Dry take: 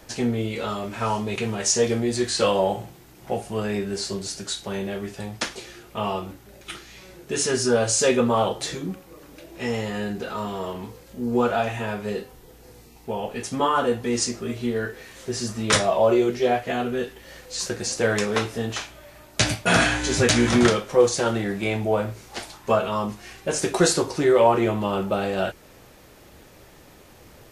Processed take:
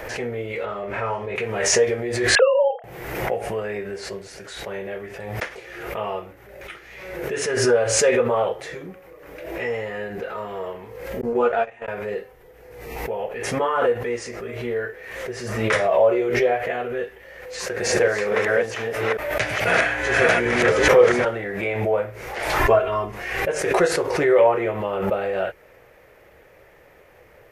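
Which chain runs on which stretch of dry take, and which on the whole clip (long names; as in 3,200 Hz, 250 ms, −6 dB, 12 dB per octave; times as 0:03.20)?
0:00.65–0:01.36: low-pass filter 2,700 Hz 6 dB per octave + double-tracking delay 35 ms −7 dB
0:02.35–0:02.84: three sine waves on the formant tracks + double-tracking delay 31 ms −12 dB
0:11.21–0:11.88: low-pass filter 11,000 Hz + noise gate −23 dBFS, range −55 dB + double-tracking delay 13 ms −2.5 dB
0:17.46–0:21.25: delay that plays each chunk backwards 428 ms, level 0 dB + low-shelf EQ 62 Hz −8 dB
0:22.59–0:23.12: low-shelf EQ 180 Hz +10 dB + comb filter 2.9 ms, depth 81%
whole clip: octave-band graphic EQ 250/500/2,000/4,000/8,000 Hz −8/+11/+11/−7/−8 dB; background raised ahead of every attack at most 44 dB per second; level −6.5 dB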